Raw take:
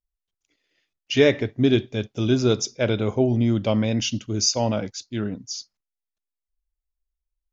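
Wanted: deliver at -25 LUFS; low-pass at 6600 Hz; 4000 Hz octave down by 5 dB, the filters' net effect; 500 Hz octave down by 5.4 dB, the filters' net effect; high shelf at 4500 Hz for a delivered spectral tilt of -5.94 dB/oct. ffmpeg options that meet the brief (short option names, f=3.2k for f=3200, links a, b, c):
-af "lowpass=6.6k,equalizer=f=500:t=o:g=-7,equalizer=f=4k:t=o:g=-3,highshelf=f=4.5k:g=-5,volume=0.5dB"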